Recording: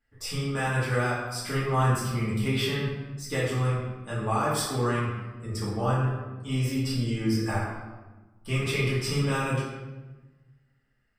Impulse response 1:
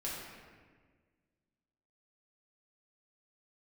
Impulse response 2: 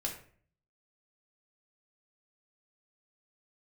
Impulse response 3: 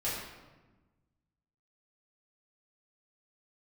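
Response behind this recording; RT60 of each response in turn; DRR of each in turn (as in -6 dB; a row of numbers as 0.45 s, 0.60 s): 3; 1.6 s, 0.50 s, 1.2 s; -6.5 dB, -1.0 dB, -9.5 dB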